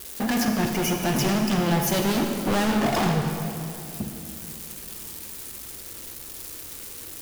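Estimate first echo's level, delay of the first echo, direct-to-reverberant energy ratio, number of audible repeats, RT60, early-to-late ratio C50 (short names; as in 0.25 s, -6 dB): none, none, 3.5 dB, none, 2.6 s, 4.0 dB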